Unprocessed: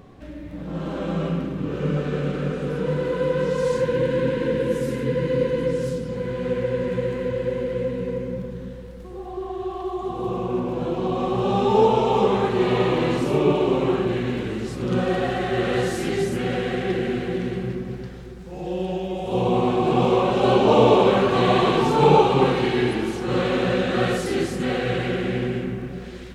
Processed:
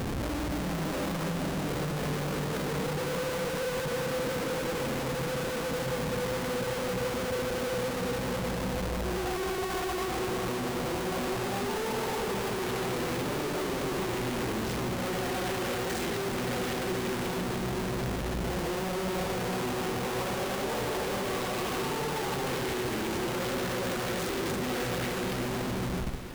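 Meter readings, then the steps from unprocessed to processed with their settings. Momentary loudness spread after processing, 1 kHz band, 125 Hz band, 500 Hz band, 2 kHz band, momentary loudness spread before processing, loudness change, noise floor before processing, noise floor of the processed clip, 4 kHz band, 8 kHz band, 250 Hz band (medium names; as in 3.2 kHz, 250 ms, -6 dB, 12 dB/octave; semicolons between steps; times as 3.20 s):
1 LU, -9.0 dB, -8.5 dB, -11.0 dB, -3.5 dB, 13 LU, -9.0 dB, -37 dBFS, -33 dBFS, -3.5 dB, +5.5 dB, -9.0 dB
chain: fade out at the end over 2.27 s; compression, threshold -29 dBFS, peak gain reduction 17 dB; Schmitt trigger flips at -48.5 dBFS; echo whose repeats swap between lows and highs 164 ms, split 1.5 kHz, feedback 87%, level -11 dB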